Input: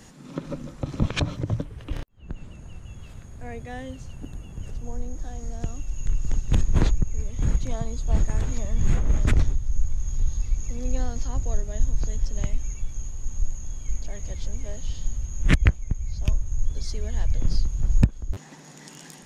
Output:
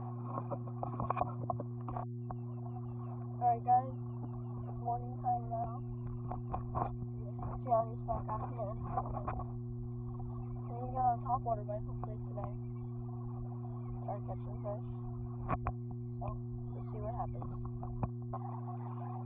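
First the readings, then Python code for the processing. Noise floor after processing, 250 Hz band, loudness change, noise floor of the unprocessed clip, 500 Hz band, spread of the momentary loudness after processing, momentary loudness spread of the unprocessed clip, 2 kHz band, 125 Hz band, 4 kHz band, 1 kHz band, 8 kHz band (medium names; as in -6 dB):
-43 dBFS, -10.0 dB, -10.5 dB, -45 dBFS, -2.0 dB, 9 LU, 16 LU, -21.0 dB, -10.0 dB, under -35 dB, +7.5 dB, no reading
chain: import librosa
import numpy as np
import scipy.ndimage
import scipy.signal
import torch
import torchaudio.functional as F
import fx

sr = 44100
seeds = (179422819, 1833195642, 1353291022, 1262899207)

p1 = scipy.signal.sosfilt(scipy.signal.butter(2, 47.0, 'highpass', fs=sr, output='sos'), x)
p2 = fx.dereverb_blind(p1, sr, rt60_s=2.0)
p3 = fx.peak_eq(p2, sr, hz=1400.0, db=6.5, octaves=0.69)
p4 = fx.over_compress(p3, sr, threshold_db=-32.0, ratio=-0.5)
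p5 = p3 + (p4 * 10.0 ** (-1.0 / 20.0))
p6 = fx.formant_cascade(p5, sr, vowel='a')
p7 = fx.dmg_buzz(p6, sr, base_hz=120.0, harmonics=3, level_db=-49.0, tilt_db=-8, odd_only=False)
y = p7 * 10.0 ** (7.0 / 20.0)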